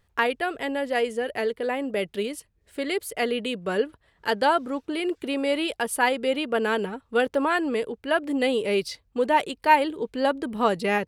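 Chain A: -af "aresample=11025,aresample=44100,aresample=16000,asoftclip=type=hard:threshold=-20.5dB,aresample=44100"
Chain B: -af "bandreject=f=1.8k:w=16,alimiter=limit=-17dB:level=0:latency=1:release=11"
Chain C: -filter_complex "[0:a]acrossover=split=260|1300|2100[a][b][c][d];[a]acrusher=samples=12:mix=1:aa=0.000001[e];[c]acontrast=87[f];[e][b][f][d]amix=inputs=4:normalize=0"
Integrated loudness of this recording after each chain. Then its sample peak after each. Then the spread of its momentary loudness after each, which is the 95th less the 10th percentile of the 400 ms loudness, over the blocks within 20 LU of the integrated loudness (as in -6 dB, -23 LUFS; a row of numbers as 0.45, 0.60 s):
-27.5, -27.5, -24.0 LUFS; -18.5, -17.0, -2.0 dBFS; 5, 5, 8 LU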